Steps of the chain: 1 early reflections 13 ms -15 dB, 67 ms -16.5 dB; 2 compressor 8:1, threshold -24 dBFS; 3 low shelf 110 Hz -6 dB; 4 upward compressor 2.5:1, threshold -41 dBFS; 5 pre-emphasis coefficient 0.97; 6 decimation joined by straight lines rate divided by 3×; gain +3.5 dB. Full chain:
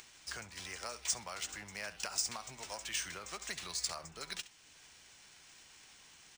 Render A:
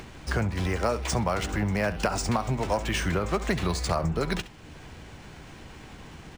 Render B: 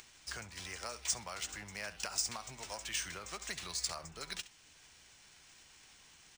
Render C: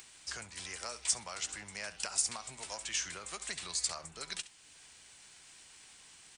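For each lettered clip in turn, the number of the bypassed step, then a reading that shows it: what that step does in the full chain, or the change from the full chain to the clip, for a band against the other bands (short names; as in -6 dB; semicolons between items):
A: 5, 8 kHz band -18.5 dB; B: 3, 125 Hz band +3.0 dB; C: 6, 8 kHz band +4.0 dB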